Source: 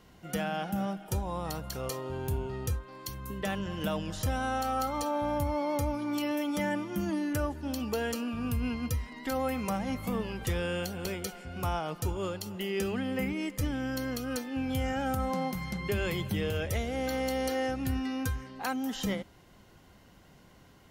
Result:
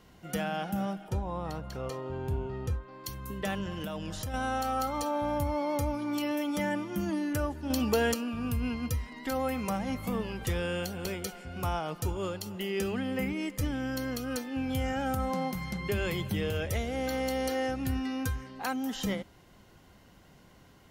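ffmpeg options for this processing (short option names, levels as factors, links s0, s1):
-filter_complex "[0:a]asettb=1/sr,asplit=3[s0][s1][s2];[s0]atrim=end=1.084[s3];[s1]atrim=start=1.08:end=3.04,asetpts=PTS-STARTPTS,afade=t=in:d=0.004:c=qsin,afade=t=out:st=1.956:d=0.004:c=qsin,aemphasis=mode=reproduction:type=75kf[s4];[s2]atrim=start=3.036[s5];[s3][s4]acrossfade=d=0.004:c1=hsin:c2=qsin[s6];[s6][s5]acrossfade=d=0.004:c1=qsin:c2=hsin,asettb=1/sr,asplit=3[s7][s8][s9];[s7]atrim=end=3.694[s10];[s8]atrim=start=3.69:end=4.34,asetpts=PTS-STARTPTS,afade=t=in:d=0.004:c=qsin,afade=t=out:st=0.646:d=0.004:c=qsin,acompressor=threshold=0.0251:ratio=6:attack=3.2:release=140:knee=1:detection=peak[s11];[s9]atrim=start=4.336[s12];[s10][s11]acrossfade=d=0.004:c1=hsin:c2=qsin[s13];[s13][s12]acrossfade=d=0.004:c1=qsin:c2=hsin,asettb=1/sr,asplit=3[s14][s15][s16];[s14]atrim=end=7.704[s17];[s15]atrim=start=7.7:end=8.14,asetpts=PTS-STARTPTS,afade=t=in:d=0.004:c=qsin,afade=t=out:st=0.436:d=0.004:c=qsin,acontrast=36[s18];[s16]atrim=start=8.136[s19];[s17][s18]acrossfade=d=0.004:c1=hsin:c2=qsin[s20];[s20][s19]acrossfade=d=0.004:c1=qsin:c2=hsin"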